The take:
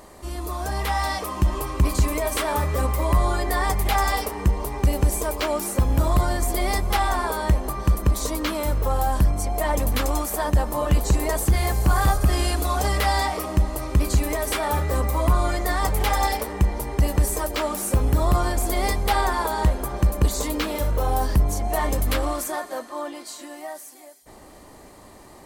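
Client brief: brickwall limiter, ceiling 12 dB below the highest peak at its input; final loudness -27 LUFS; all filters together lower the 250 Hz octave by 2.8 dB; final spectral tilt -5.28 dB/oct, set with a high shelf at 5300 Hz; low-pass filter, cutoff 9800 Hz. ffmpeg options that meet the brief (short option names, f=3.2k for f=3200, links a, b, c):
-af "lowpass=9.8k,equalizer=f=250:t=o:g=-4,highshelf=f=5.3k:g=-9,volume=4.5dB,alimiter=limit=-18dB:level=0:latency=1"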